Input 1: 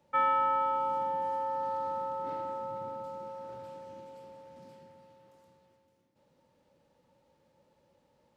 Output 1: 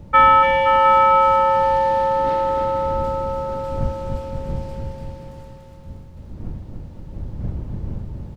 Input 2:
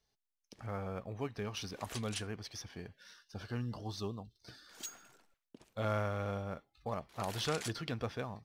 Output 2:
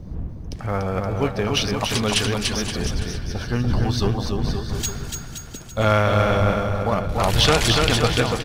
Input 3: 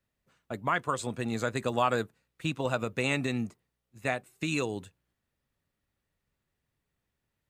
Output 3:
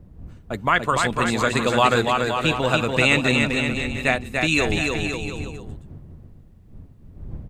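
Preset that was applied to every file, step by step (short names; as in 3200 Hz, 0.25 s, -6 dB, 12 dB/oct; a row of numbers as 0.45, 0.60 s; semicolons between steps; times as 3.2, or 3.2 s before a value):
wind noise 110 Hz -46 dBFS; bouncing-ball echo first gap 0.29 s, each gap 0.8×, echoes 5; dynamic EQ 3000 Hz, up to +6 dB, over -47 dBFS, Q 0.85; normalise peaks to -2 dBFS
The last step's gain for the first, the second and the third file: +13.5, +16.0, +7.5 dB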